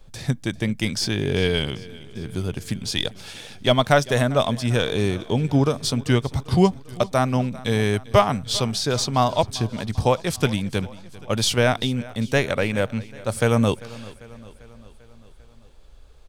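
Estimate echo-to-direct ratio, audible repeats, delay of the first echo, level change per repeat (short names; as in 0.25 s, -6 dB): -18.0 dB, 4, 0.395 s, -4.5 dB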